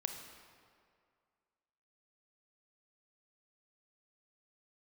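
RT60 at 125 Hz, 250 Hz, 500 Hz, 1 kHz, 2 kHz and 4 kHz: 1.9 s, 2.0 s, 2.2 s, 2.2 s, 1.8 s, 1.4 s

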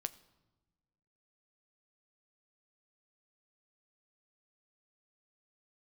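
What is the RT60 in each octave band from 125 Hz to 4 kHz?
1.8 s, 1.8 s, 1.2 s, 1.1 s, 0.80 s, 0.75 s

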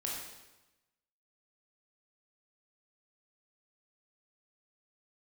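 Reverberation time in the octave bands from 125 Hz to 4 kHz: 1.2 s, 1.1 s, 1.0 s, 1.0 s, 1.0 s, 0.95 s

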